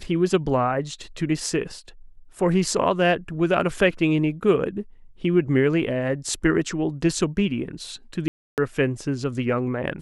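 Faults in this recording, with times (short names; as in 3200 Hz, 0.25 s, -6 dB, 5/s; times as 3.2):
8.28–8.58 gap 0.298 s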